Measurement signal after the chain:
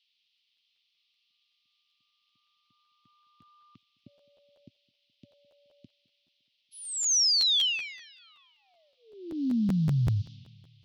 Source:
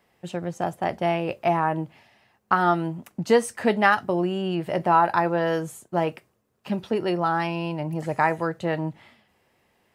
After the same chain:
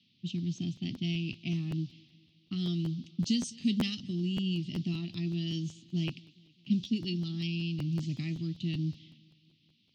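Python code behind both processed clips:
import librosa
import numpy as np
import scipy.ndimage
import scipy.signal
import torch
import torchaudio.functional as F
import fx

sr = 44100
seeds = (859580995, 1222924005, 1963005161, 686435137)

p1 = fx.dmg_noise_band(x, sr, seeds[0], low_hz=1000.0, high_hz=4800.0, level_db=-61.0)
p2 = scipy.signal.sosfilt(scipy.signal.ellip(3, 1.0, 40, [260.0, 3100.0], 'bandstop', fs=sr, output='sos'), p1)
p3 = fx.env_lowpass(p2, sr, base_hz=1800.0, full_db=-24.5)
p4 = fx.high_shelf(p3, sr, hz=3900.0, db=7.5)
p5 = fx.rider(p4, sr, range_db=4, speed_s=0.5)
p6 = p4 + (p5 * librosa.db_to_amplitude(-0.5))
p7 = scipy.signal.sosfilt(scipy.signal.ellip(3, 1.0, 40, [110.0, 6100.0], 'bandpass', fs=sr, output='sos'), p6)
p8 = p7 + fx.echo_feedback(p7, sr, ms=211, feedback_pct=55, wet_db=-24, dry=0)
p9 = fx.buffer_crackle(p8, sr, first_s=0.37, period_s=0.19, block=512, kind='repeat')
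y = p9 * librosa.db_to_amplitude(-5.5)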